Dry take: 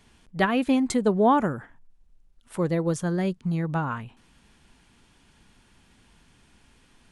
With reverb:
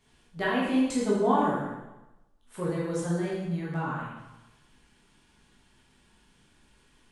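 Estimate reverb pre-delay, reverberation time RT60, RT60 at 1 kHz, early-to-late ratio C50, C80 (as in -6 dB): 6 ms, 1.0 s, 1.0 s, 0.0 dB, 3.0 dB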